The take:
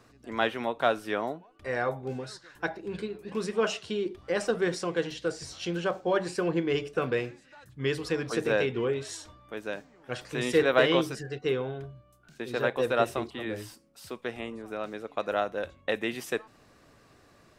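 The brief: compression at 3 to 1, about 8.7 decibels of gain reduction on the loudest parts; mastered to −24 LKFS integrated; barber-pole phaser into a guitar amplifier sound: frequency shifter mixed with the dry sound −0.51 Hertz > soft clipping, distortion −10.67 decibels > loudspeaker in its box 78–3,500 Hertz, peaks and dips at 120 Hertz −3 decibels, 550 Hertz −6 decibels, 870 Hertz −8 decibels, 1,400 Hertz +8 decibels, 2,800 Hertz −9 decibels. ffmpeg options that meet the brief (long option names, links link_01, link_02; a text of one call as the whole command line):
ffmpeg -i in.wav -filter_complex "[0:a]acompressor=threshold=-29dB:ratio=3,asplit=2[link_01][link_02];[link_02]afreqshift=-0.51[link_03];[link_01][link_03]amix=inputs=2:normalize=1,asoftclip=threshold=-33.5dB,highpass=78,equalizer=frequency=120:width_type=q:width=4:gain=-3,equalizer=frequency=550:width_type=q:width=4:gain=-6,equalizer=frequency=870:width_type=q:width=4:gain=-8,equalizer=frequency=1400:width_type=q:width=4:gain=8,equalizer=frequency=2800:width_type=q:width=4:gain=-9,lowpass=frequency=3500:width=0.5412,lowpass=frequency=3500:width=1.3066,volume=18.5dB" out.wav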